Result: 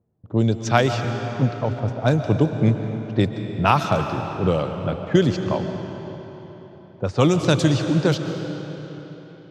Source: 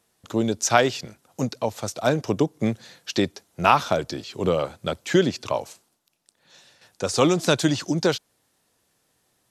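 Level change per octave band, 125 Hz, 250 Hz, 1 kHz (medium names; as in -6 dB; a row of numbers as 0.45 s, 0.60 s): +9.5 dB, +3.5 dB, 0.0 dB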